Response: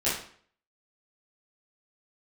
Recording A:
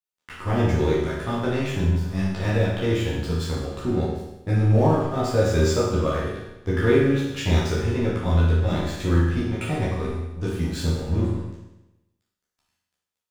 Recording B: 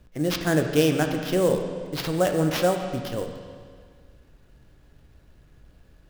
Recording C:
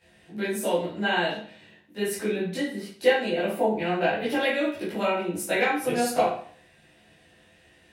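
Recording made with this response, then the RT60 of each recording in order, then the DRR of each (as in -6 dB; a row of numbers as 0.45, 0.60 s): C; 1.0, 1.9, 0.50 s; -8.5, 4.0, -11.5 dB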